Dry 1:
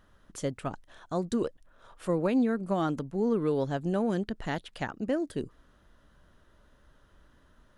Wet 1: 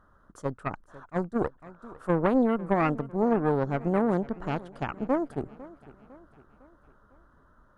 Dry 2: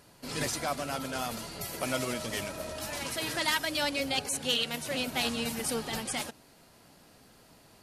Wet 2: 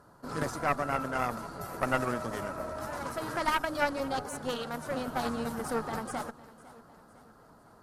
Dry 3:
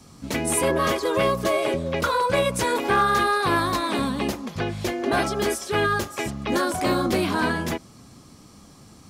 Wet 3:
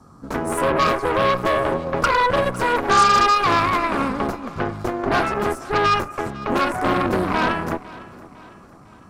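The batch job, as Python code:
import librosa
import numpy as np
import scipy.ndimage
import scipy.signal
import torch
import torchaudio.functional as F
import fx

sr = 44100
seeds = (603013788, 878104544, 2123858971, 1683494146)

y = fx.high_shelf_res(x, sr, hz=1800.0, db=-10.5, q=3.0)
y = fx.cheby_harmonics(y, sr, harmonics=(8,), levels_db=(-16,), full_scale_db=-6.0)
y = fx.echo_feedback(y, sr, ms=504, feedback_pct=49, wet_db=-19.5)
y = fx.attack_slew(y, sr, db_per_s=560.0)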